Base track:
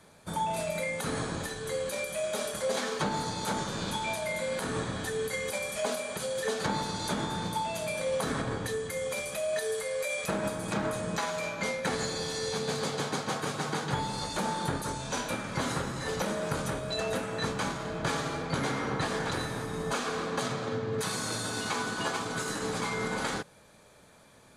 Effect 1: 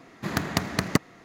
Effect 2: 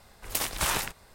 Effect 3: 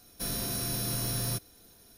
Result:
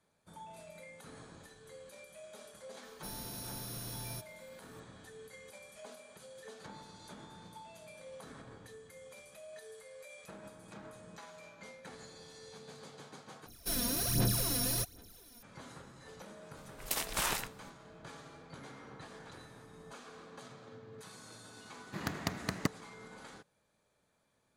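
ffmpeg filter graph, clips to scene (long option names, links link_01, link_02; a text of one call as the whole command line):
ffmpeg -i bed.wav -i cue0.wav -i cue1.wav -i cue2.wav -filter_complex "[3:a]asplit=2[link_01][link_02];[0:a]volume=-19.5dB[link_03];[link_02]aphaser=in_gain=1:out_gain=1:delay=4.2:decay=0.7:speed=1.3:type=sinusoidal[link_04];[2:a]equalizer=frequency=68:width_type=o:width=0.77:gain=-12[link_05];[link_03]asplit=2[link_06][link_07];[link_06]atrim=end=13.464[link_08];[link_04]atrim=end=1.97,asetpts=PTS-STARTPTS,volume=-3dB[link_09];[link_07]atrim=start=15.426[link_10];[link_01]atrim=end=1.97,asetpts=PTS-STARTPTS,volume=-11.5dB,afade=type=in:duration=0.004:curve=hsin,afade=type=out:start_time=1.966:duration=0.004:curve=hsin,adelay=2830[link_11];[link_05]atrim=end=1.14,asetpts=PTS-STARTPTS,volume=-5.5dB,afade=type=in:duration=0.004:curve=hsin,afade=type=out:start_time=1.136:duration=0.004:curve=hsin,adelay=16560[link_12];[1:a]atrim=end=1.24,asetpts=PTS-STARTPTS,volume=-10.5dB,afade=type=in:duration=0.004:curve=hsin,afade=type=out:start_time=1.236:duration=0.004:curve=hsin,adelay=21700[link_13];[link_08][link_09]acrossfade=duration=0.004:curve1=hsin:curve2=hsin[link_14];[link_14][link_10]acrossfade=duration=0.004:curve1=hsin:curve2=hsin[link_15];[link_15][link_11][link_12][link_13]amix=inputs=4:normalize=0" out.wav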